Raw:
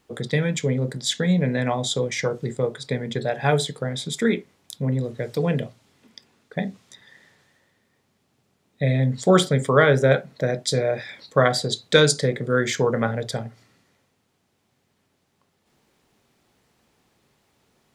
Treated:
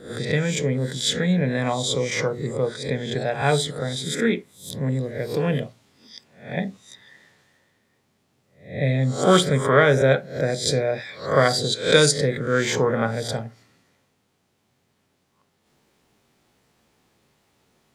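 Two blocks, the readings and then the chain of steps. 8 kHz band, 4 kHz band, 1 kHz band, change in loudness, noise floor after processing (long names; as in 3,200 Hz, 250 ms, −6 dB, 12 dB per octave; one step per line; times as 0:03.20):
+2.0 dB, +2.0 dB, +1.0 dB, +0.5 dB, −69 dBFS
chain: peak hold with a rise ahead of every peak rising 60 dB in 0.44 s
level −1 dB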